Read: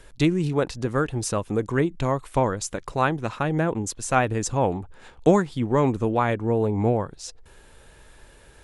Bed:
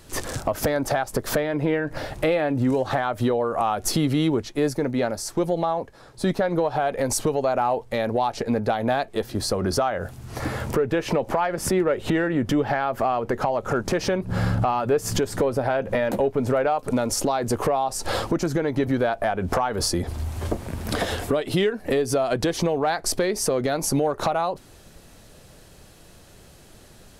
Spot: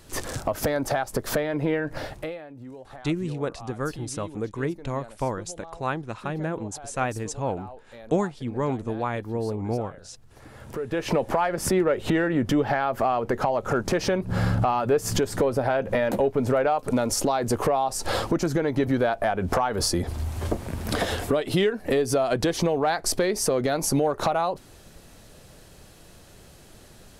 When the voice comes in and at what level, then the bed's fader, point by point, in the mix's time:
2.85 s, -6.0 dB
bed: 2.06 s -2 dB
2.46 s -20 dB
10.47 s -20 dB
11.07 s -0.5 dB

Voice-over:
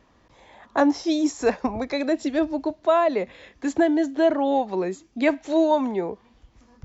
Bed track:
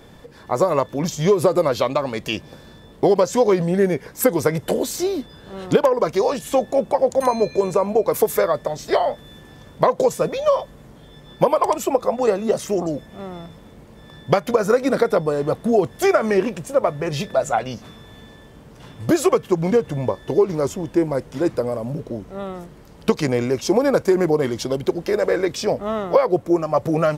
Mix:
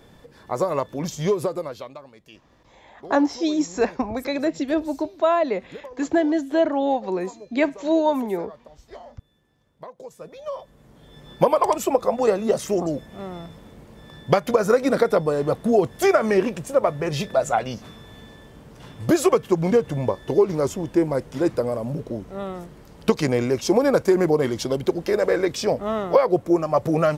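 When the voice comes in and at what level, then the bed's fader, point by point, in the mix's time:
2.35 s, 0.0 dB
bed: 1.31 s -5 dB
2.15 s -23.5 dB
9.98 s -23.5 dB
11.24 s -1 dB

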